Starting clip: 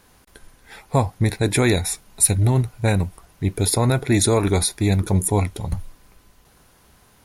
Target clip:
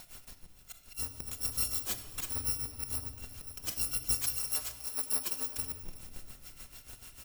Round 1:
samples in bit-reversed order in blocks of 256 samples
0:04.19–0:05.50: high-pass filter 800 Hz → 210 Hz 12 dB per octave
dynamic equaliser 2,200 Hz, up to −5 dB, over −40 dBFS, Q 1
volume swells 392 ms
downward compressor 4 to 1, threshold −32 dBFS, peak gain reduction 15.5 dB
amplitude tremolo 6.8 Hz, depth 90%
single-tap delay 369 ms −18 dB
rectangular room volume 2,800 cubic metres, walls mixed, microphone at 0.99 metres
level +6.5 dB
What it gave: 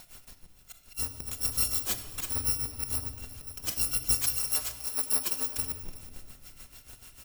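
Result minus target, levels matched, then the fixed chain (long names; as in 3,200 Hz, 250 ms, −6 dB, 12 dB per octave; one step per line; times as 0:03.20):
downward compressor: peak gain reduction −4.5 dB
samples in bit-reversed order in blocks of 256 samples
0:04.19–0:05.50: high-pass filter 800 Hz → 210 Hz 12 dB per octave
dynamic equaliser 2,200 Hz, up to −5 dB, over −40 dBFS, Q 1
volume swells 392 ms
downward compressor 4 to 1, threshold −38 dBFS, peak gain reduction 20 dB
amplitude tremolo 6.8 Hz, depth 90%
single-tap delay 369 ms −18 dB
rectangular room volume 2,800 cubic metres, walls mixed, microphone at 0.99 metres
level +6.5 dB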